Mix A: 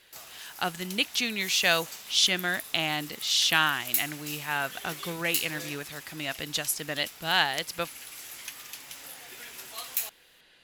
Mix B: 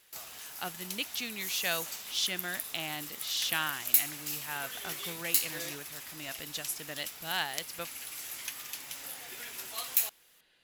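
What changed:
speech -9.0 dB; master: add treble shelf 11 kHz +4.5 dB

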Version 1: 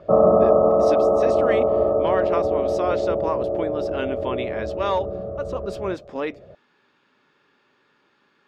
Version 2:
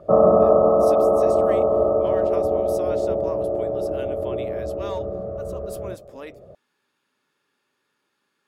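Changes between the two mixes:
speech -12.0 dB; master: remove distance through air 170 m

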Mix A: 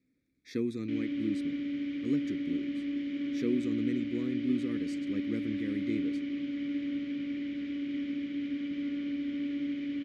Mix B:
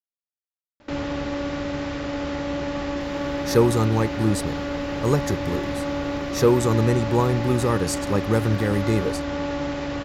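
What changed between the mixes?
speech: entry +3.00 s; master: remove vowel filter i

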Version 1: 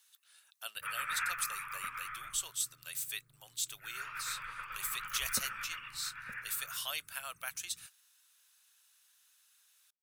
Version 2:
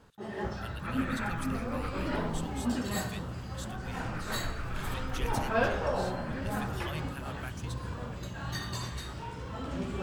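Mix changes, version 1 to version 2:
first sound: unmuted; master: add tilt EQ -4 dB/octave

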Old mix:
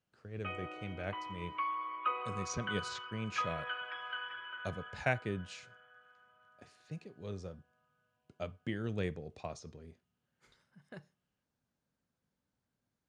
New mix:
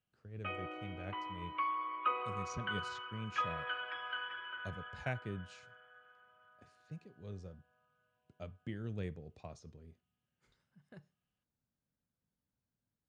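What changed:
speech -9.0 dB; master: add bass shelf 220 Hz +8.5 dB

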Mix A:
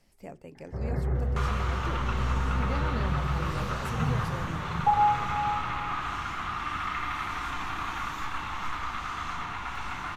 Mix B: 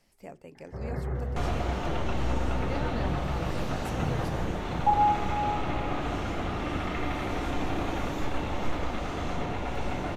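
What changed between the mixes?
second sound: add resonant low shelf 790 Hz +12.5 dB, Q 3; master: add bass shelf 210 Hz -5 dB

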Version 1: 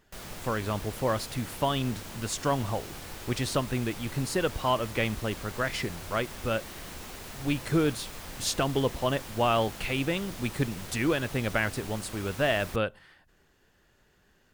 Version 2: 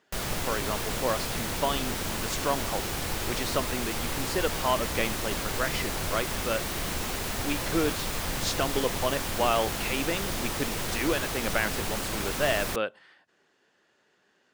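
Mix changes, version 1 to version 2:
speech: add band-pass 280–6900 Hz; background +10.5 dB

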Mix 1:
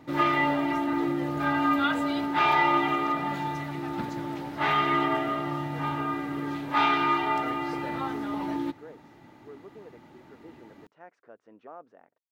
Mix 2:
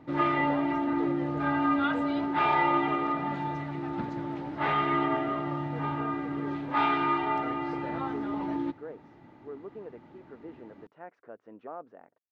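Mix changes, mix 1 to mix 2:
speech +5.5 dB; master: add tape spacing loss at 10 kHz 22 dB

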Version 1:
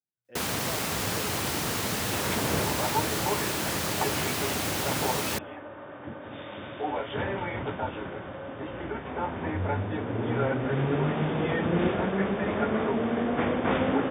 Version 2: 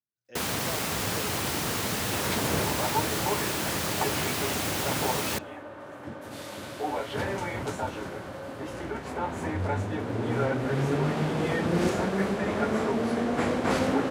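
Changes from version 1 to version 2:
speech: remove distance through air 360 m; second sound: remove brick-wall FIR low-pass 3.7 kHz

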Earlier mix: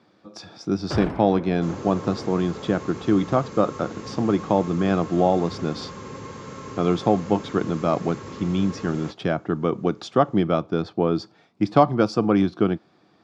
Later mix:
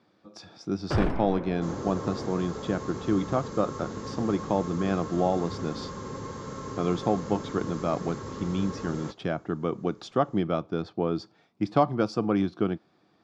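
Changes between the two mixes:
speech -6.0 dB; second sound: add peaking EQ 2.5 kHz -9 dB 0.62 oct; master: remove high-pass 60 Hz

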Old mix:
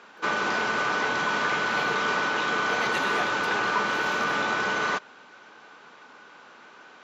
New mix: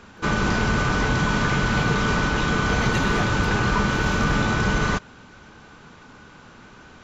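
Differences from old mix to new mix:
background: remove distance through air 83 m; master: remove high-pass 470 Hz 12 dB/octave

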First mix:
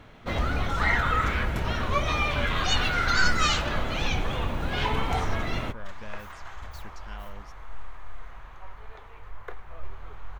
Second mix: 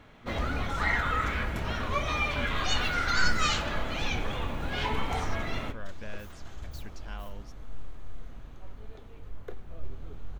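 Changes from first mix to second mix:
first sound -4.5 dB; second sound: add graphic EQ 125/250/1000/2000 Hz +4/+10/-12/-9 dB; reverb: on, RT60 0.45 s

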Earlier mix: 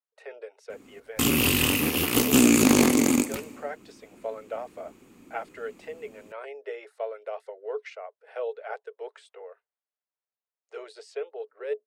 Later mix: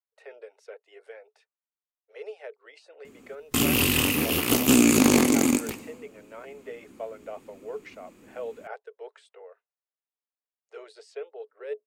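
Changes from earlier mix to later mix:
speech -3.5 dB; background: entry +2.35 s

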